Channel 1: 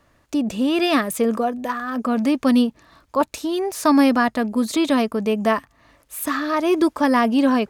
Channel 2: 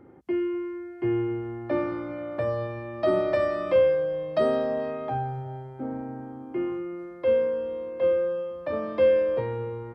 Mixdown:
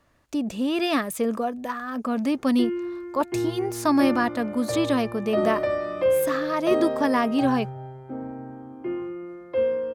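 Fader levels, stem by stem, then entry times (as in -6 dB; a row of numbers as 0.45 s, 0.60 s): -5.0 dB, -1.0 dB; 0.00 s, 2.30 s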